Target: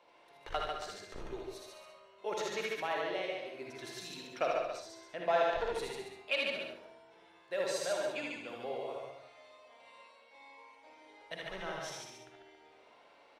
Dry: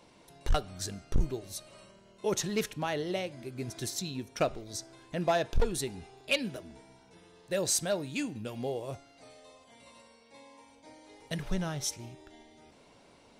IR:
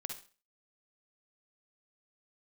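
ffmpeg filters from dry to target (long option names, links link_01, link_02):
-filter_complex "[0:a]acrossover=split=420 3700:gain=0.0891 1 0.141[link_01][link_02][link_03];[link_01][link_02][link_03]amix=inputs=3:normalize=0,aecho=1:1:78.72|145.8|277:0.631|0.631|0.282[link_04];[1:a]atrim=start_sample=2205[link_05];[link_04][link_05]afir=irnorm=-1:irlink=0"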